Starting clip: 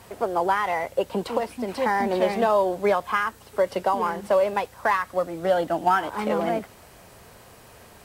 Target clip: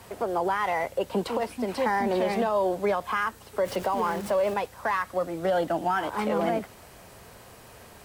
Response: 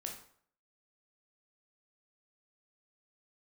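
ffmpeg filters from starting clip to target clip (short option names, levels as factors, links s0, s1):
-filter_complex "[0:a]asettb=1/sr,asplit=3[s0][s1][s2];[s0]atrim=end=3.654[s3];[s1]atrim=start=3.65:end=4.54,asetpts=PTS-STARTPTS,afade=t=in:d=0.004:c=qsin,afade=t=out:st=0.886:d=0.004:c=qsin,aeval=exprs='val(0)+0.5*0.015*sgn(val(0))':c=same[s4];[s2]atrim=start=4.536[s5];[s3][s4]acrossfade=d=0.004:c1=hsin:c2=qsin[s6];[s6][s5]acrossfade=d=0.004:c1=qsin:c2=hsin,acrossover=split=180[s7][s8];[s8]alimiter=limit=0.133:level=0:latency=1:release=52[s9];[s7][s9]amix=inputs=2:normalize=0"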